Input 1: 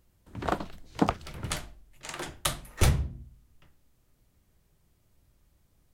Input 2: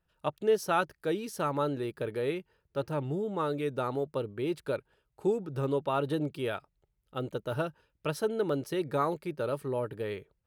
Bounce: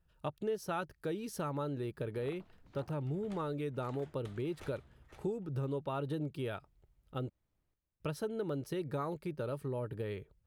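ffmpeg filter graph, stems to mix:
ffmpeg -i stem1.wav -i stem2.wav -filter_complex "[0:a]bass=frequency=250:gain=-3,treble=frequency=4000:gain=-10,acrossover=split=530|7700[link_01][link_02][link_03];[link_01]acompressor=threshold=-39dB:ratio=4[link_04];[link_02]acompressor=threshold=-38dB:ratio=4[link_05];[link_03]acompressor=threshold=-57dB:ratio=4[link_06];[link_04][link_05][link_06]amix=inputs=3:normalize=0,adelay=1800,volume=-12.5dB,asplit=2[link_07][link_08];[link_08]volume=-9.5dB[link_09];[1:a]lowshelf=frequency=170:gain=11.5,volume=-2dB,asplit=3[link_10][link_11][link_12];[link_10]atrim=end=7.3,asetpts=PTS-STARTPTS,afade=type=out:start_time=7.296:duration=0.004:curve=hsin[link_13];[link_11]atrim=start=7.3:end=8,asetpts=PTS-STARTPTS,volume=0[link_14];[link_12]atrim=start=8,asetpts=PTS-STARTPTS,afade=type=in:duration=0.004:curve=hsin[link_15];[link_13][link_14][link_15]concat=n=3:v=0:a=1[link_16];[link_09]aecho=0:1:512|1024|1536:1|0.17|0.0289[link_17];[link_07][link_16][link_17]amix=inputs=3:normalize=0,acompressor=threshold=-37dB:ratio=2.5" out.wav

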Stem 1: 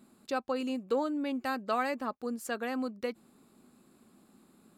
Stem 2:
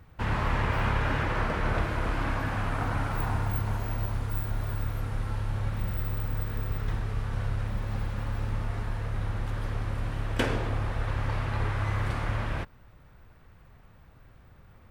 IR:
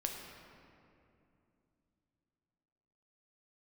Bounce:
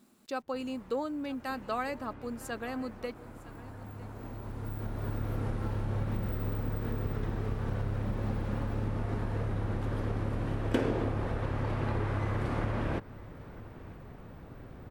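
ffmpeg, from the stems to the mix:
-filter_complex "[0:a]acrusher=bits=10:mix=0:aa=0.000001,volume=-3dB,asplit=3[link_01][link_02][link_03];[link_02]volume=-19dB[link_04];[1:a]acompressor=threshold=-35dB:ratio=6,equalizer=frequency=320:width_type=o:width=2.5:gain=12.5,adelay=350,volume=2dB,asplit=2[link_05][link_06];[link_06]volume=-20.5dB[link_07];[link_03]apad=whole_len=672790[link_08];[link_05][link_08]sidechaincompress=threshold=-54dB:ratio=20:attack=16:release=1410[link_09];[link_04][link_07]amix=inputs=2:normalize=0,aecho=0:1:957:1[link_10];[link_01][link_09][link_10]amix=inputs=3:normalize=0"

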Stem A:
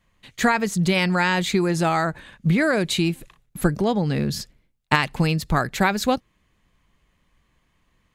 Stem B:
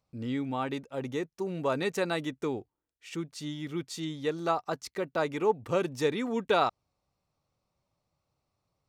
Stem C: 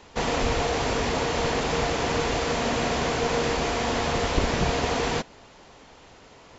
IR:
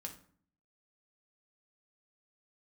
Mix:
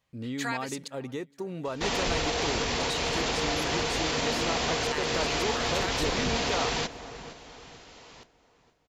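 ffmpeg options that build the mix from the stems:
-filter_complex "[0:a]highpass=620,volume=-14dB,asplit=3[link_01][link_02][link_03];[link_01]atrim=end=0.88,asetpts=PTS-STARTPTS,afade=type=out:start_time=0.876:duration=0.004:curve=hsin[link_04];[link_02]atrim=start=0.88:end=2.8,asetpts=PTS-STARTPTS,volume=0[link_05];[link_03]atrim=start=2.8,asetpts=PTS-STARTPTS,afade=type=in:duration=0.004:curve=hsin[link_06];[link_04][link_05][link_06]concat=n=3:v=0:a=1,asplit=3[link_07][link_08][link_09];[link_08]volume=-14.5dB[link_10];[link_09]volume=-23dB[link_11];[1:a]acompressor=threshold=-33dB:ratio=2.5,volume=0.5dB,asplit=2[link_12][link_13];[link_13]volume=-23dB[link_14];[2:a]asoftclip=type=tanh:threshold=-14dB,adelay=1650,volume=-3.5dB,asplit=2[link_15][link_16];[link_16]volume=-14dB[link_17];[link_07][link_15]amix=inputs=2:normalize=0,equalizer=frequency=4400:width_type=o:width=2.2:gain=8,alimiter=limit=-20.5dB:level=0:latency=1:release=31,volume=0dB[link_18];[3:a]atrim=start_sample=2205[link_19];[link_10][link_19]afir=irnorm=-1:irlink=0[link_20];[link_11][link_14][link_17]amix=inputs=3:normalize=0,aecho=0:1:467|934|1401|1868|2335|2802:1|0.4|0.16|0.064|0.0256|0.0102[link_21];[link_12][link_18][link_20][link_21]amix=inputs=4:normalize=0"

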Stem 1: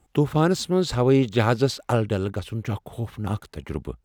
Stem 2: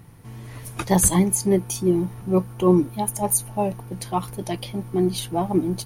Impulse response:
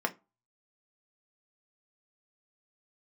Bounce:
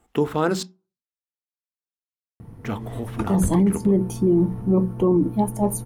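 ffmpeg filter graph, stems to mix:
-filter_complex "[0:a]bandreject=frequency=60:width_type=h:width=6,bandreject=frequency=120:width_type=h:width=6,bandreject=frequency=180:width_type=h:width=6,volume=-2.5dB,asplit=3[link_01][link_02][link_03];[link_01]atrim=end=0.63,asetpts=PTS-STARTPTS,afade=type=out:start_time=0.626:duration=0.004:curve=hsin[link_04];[link_02]atrim=start=0.63:end=2.63,asetpts=PTS-STARTPTS,volume=0[link_05];[link_03]atrim=start=2.63,asetpts=PTS-STARTPTS,afade=type=in:duration=0.004:curve=hsin[link_06];[link_04][link_05][link_06]concat=n=3:v=0:a=1,asplit=3[link_07][link_08][link_09];[link_08]volume=-8dB[link_10];[1:a]tiltshelf=frequency=770:gain=10,adelay=2400,volume=-2dB,asplit=2[link_11][link_12];[link_12]volume=-11dB[link_13];[link_09]apad=whole_len=364065[link_14];[link_11][link_14]sidechaincompress=threshold=-33dB:ratio=8:attack=16:release=119[link_15];[2:a]atrim=start_sample=2205[link_16];[link_10][link_13]amix=inputs=2:normalize=0[link_17];[link_17][link_16]afir=irnorm=-1:irlink=0[link_18];[link_07][link_15][link_18]amix=inputs=3:normalize=0,alimiter=limit=-11dB:level=0:latency=1:release=38"

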